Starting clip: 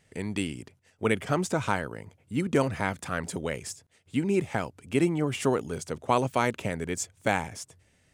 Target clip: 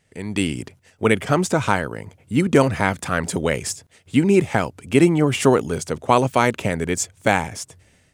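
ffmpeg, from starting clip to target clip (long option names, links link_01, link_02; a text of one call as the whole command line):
ffmpeg -i in.wav -af "dynaudnorm=framelen=150:gausssize=5:maxgain=12dB" out.wav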